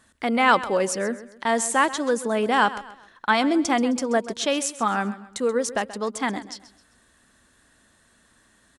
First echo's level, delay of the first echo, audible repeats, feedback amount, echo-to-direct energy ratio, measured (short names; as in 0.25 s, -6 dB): -15.5 dB, 0.131 s, 3, 37%, -15.0 dB